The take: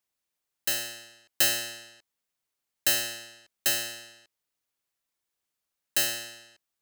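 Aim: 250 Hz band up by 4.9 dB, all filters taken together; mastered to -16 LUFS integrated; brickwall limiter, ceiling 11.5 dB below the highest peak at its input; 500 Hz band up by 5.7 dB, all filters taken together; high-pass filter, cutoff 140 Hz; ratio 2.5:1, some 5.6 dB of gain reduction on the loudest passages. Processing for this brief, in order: high-pass 140 Hz; peaking EQ 250 Hz +4 dB; peaking EQ 500 Hz +6.5 dB; compression 2.5:1, threshold -27 dBFS; trim +19.5 dB; peak limiter -4 dBFS

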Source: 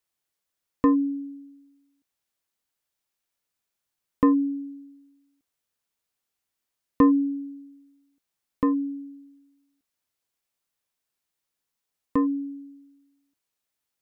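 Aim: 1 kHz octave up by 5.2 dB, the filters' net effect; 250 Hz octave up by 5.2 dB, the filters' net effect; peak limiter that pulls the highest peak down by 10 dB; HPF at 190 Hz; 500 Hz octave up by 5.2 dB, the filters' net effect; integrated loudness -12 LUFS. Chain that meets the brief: high-pass 190 Hz; peaking EQ 250 Hz +5.5 dB; peaking EQ 500 Hz +3.5 dB; peaking EQ 1 kHz +4.5 dB; trim +11 dB; peak limiter 0 dBFS

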